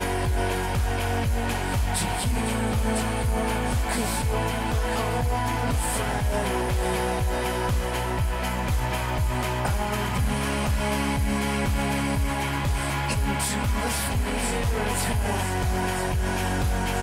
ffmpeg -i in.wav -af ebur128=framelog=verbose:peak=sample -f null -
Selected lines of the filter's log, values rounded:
Integrated loudness:
  I:         -25.8 LUFS
  Threshold: -35.8 LUFS
Loudness range:
  LRA:         0.7 LU
  Threshold: -45.8 LUFS
  LRA low:   -26.2 LUFS
  LRA high:  -25.5 LUFS
Sample peak:
  Peak:      -13.7 dBFS